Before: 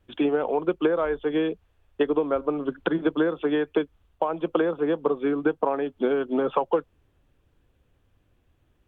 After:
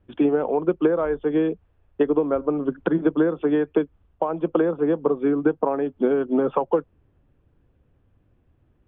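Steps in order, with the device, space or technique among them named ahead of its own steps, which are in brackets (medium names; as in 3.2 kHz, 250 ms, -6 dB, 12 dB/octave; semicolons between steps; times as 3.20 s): phone in a pocket (low-pass 3.2 kHz 12 dB/octave; peaking EQ 160 Hz +5 dB 2.4 oct; treble shelf 2.3 kHz -8.5 dB); trim +1 dB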